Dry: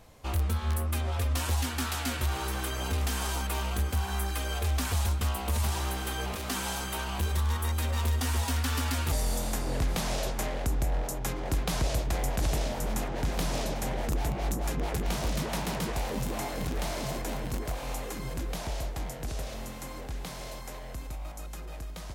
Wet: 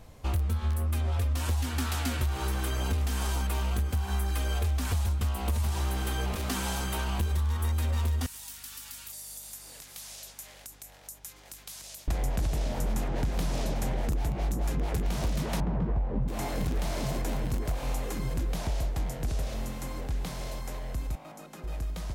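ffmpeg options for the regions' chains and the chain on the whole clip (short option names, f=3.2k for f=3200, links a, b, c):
-filter_complex "[0:a]asettb=1/sr,asplit=3[a][b][c];[a]atrim=end=8.264[d];[b]atrim=start=8.26:end=12.08,asetpts=PTS-STARTPTS,afade=t=in:d=0.004:c=qsin,afade=t=out:st=3.816:d=0.004:c=qsin,aderivative,acompressor=threshold=-43dB:ratio=2:attack=3.2:release=140:knee=1:detection=peak,aeval=exprs='val(0)+0.000631*(sin(2*PI*50*n/s)+sin(2*PI*2*50*n/s)/2+sin(2*PI*3*50*n/s)/3+sin(2*PI*4*50*n/s)/4+sin(2*PI*5*50*n/s)/5)':c=same[e];[c]atrim=start=12.076[f];[d][e]acrossfade=d=0.004:c1=hsin:c2=qsin[g];[g][f]acrossfade=d=0.004:c1=qsin:c2=hsin,asettb=1/sr,asplit=3[h][i][j];[h]atrim=end=15.604[k];[i]atrim=start=15.6:end=16.28,asetpts=PTS-STARTPTS,afade=t=in:d=0.004:c=qsin,afade=t=out:st=0.676:d=0.004:c=qsin,lowpass=1.2k,lowshelf=f=180:g=7[l];[j]atrim=start=16.276[m];[k][l]acrossfade=d=0.004:c1=hsin:c2=qsin[n];[n][m]acrossfade=d=0.004:c1=qsin:c2=hsin,asettb=1/sr,asplit=3[o][p][q];[o]atrim=end=21.154[r];[p]atrim=start=21.15:end=21.64,asetpts=PTS-STARTPTS,afade=t=in:d=0.004:c=qsin,afade=t=out:st=0.486:d=0.004:c=qsin,highpass=f=160:w=0.5412,highpass=f=160:w=1.3066,highshelf=f=3.9k:g=-6.5[s];[q]atrim=start=21.636[t];[r][s]acrossfade=d=0.004:c1=hsin:c2=qsin[u];[u][t]acrossfade=d=0.004:c1=qsin:c2=hsin,lowshelf=f=260:g=7,acompressor=threshold=-25dB:ratio=6"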